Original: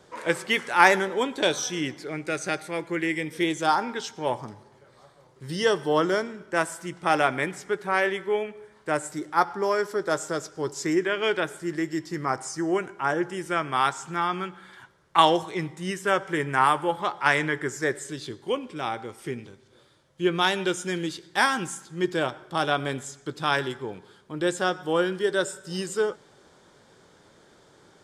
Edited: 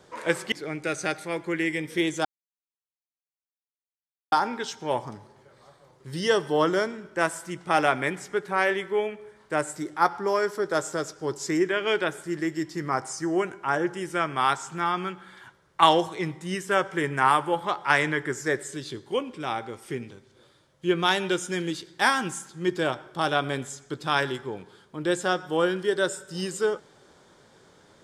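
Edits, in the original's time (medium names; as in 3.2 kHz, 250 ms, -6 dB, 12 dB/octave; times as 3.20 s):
0.52–1.95 s: delete
3.68 s: insert silence 2.07 s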